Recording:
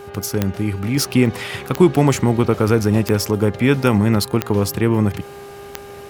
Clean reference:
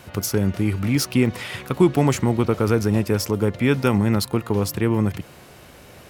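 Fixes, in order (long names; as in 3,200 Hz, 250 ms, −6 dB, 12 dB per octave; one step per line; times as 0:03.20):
click removal
hum removal 402.3 Hz, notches 4
level 0 dB, from 0:00.97 −3.5 dB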